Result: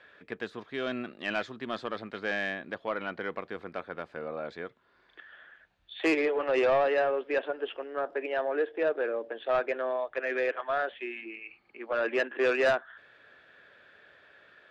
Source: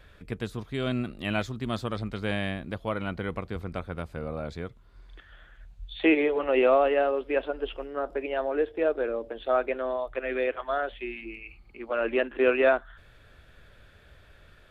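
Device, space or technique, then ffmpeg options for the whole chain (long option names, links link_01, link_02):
intercom: -af "highpass=330,lowpass=3800,equalizer=frequency=1700:width_type=o:width=0.23:gain=7,asoftclip=type=tanh:threshold=-19dB"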